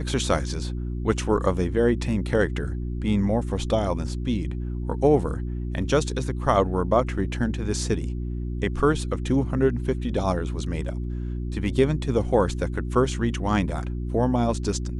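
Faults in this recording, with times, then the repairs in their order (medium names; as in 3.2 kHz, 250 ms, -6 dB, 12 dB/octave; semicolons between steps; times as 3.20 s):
hum 60 Hz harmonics 6 -29 dBFS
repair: de-hum 60 Hz, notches 6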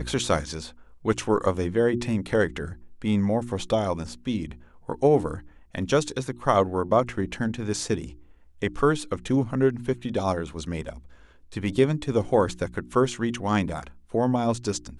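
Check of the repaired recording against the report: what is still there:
nothing left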